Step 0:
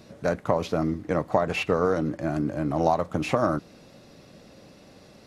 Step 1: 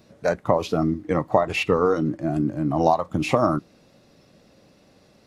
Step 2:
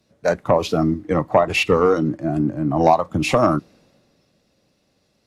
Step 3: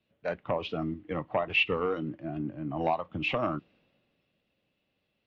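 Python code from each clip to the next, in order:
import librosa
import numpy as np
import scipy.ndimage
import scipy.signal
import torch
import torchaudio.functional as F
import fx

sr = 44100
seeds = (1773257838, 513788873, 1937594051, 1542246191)

y1 = fx.noise_reduce_blind(x, sr, reduce_db=9)
y1 = y1 * 10.0 ** (4.0 / 20.0)
y2 = fx.fold_sine(y1, sr, drive_db=3, ceiling_db=-2.0)
y2 = fx.band_widen(y2, sr, depth_pct=40)
y2 = y2 * 10.0 ** (-3.0 / 20.0)
y3 = fx.ladder_lowpass(y2, sr, hz=3300.0, resonance_pct=60)
y3 = y3 * 10.0 ** (-3.5 / 20.0)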